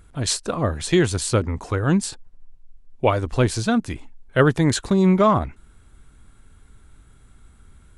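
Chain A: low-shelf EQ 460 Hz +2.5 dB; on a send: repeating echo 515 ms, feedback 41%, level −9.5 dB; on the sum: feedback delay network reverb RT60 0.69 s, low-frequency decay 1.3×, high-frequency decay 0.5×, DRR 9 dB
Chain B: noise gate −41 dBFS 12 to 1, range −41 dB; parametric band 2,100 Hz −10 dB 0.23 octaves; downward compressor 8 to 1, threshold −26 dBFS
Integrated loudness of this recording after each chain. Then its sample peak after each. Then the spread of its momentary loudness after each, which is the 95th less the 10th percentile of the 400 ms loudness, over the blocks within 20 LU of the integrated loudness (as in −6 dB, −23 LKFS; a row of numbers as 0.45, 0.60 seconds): −19.0, −31.5 LKFS; −1.5, −14.0 dBFS; 17, 7 LU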